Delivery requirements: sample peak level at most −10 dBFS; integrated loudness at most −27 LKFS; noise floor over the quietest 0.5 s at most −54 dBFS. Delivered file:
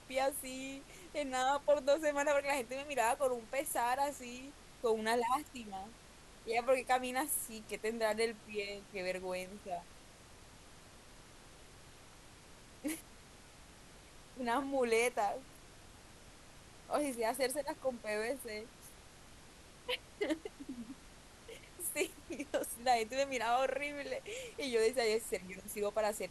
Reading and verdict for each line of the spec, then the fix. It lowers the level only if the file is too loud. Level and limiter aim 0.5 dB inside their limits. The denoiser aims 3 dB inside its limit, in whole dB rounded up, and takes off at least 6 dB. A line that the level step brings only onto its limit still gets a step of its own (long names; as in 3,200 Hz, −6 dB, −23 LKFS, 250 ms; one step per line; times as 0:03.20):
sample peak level −19.5 dBFS: in spec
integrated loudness −36.5 LKFS: in spec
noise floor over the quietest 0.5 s −57 dBFS: in spec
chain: no processing needed